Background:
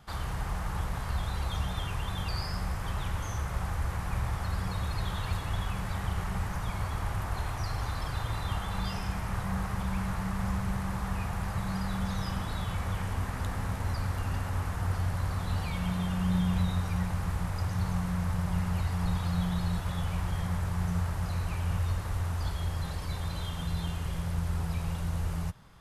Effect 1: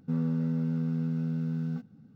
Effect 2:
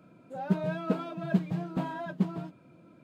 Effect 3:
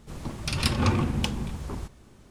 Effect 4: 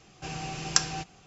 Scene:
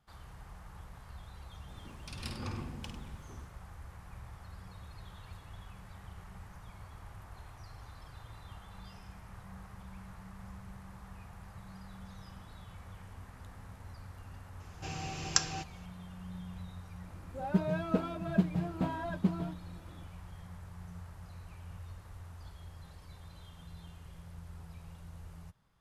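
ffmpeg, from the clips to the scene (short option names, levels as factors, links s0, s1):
-filter_complex "[0:a]volume=0.141[s0];[3:a]aecho=1:1:52|99:0.422|0.282,atrim=end=2.3,asetpts=PTS-STARTPTS,volume=0.133,afade=t=in:d=0.004:c=hsin,afade=t=out:st=2.296:d=0.004:c=hsin,adelay=1600[s1];[4:a]atrim=end=1.26,asetpts=PTS-STARTPTS,volume=0.596,afade=t=in:d=0.004:c=hsin,afade=t=out:st=1.256:d=0.004:c=hsin,adelay=643860S[s2];[2:a]atrim=end=3.03,asetpts=PTS-STARTPTS,volume=0.841,afade=t=in:d=0.004:c=hsin,afade=t=out:st=3.026:d=0.004:c=hsin,adelay=17040[s3];[s0][s1][s2][s3]amix=inputs=4:normalize=0"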